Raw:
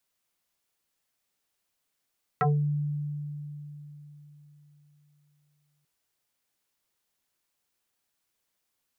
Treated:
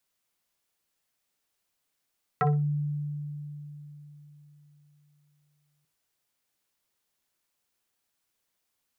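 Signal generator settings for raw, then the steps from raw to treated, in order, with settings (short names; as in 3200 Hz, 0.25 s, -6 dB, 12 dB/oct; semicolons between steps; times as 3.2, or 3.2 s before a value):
FM tone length 3.44 s, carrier 147 Hz, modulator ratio 2.01, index 5.9, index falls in 0.29 s exponential, decay 3.92 s, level -20 dB
flutter echo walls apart 10.2 m, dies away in 0.23 s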